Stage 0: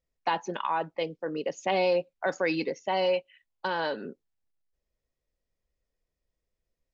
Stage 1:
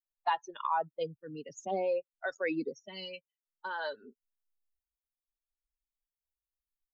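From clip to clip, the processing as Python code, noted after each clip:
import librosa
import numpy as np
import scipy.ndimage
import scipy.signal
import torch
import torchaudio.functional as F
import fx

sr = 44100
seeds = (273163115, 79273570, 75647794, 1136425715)

y = fx.bin_expand(x, sr, power=2.0)
y = fx.rider(y, sr, range_db=4, speed_s=0.5)
y = fx.stagger_phaser(y, sr, hz=0.58)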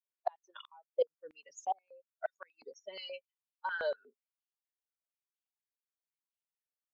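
y = fx.noise_reduce_blind(x, sr, reduce_db=7)
y = fx.gate_flip(y, sr, shuts_db=-25.0, range_db=-33)
y = fx.filter_held_highpass(y, sr, hz=8.4, low_hz=500.0, high_hz=2900.0)
y = y * 10.0 ** (-3.5 / 20.0)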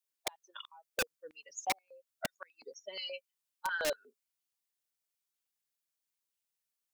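y = fx.high_shelf(x, sr, hz=2800.0, db=8.5)
y = (np.mod(10.0 ** (25.5 / 20.0) * y + 1.0, 2.0) - 1.0) / 10.0 ** (25.5 / 20.0)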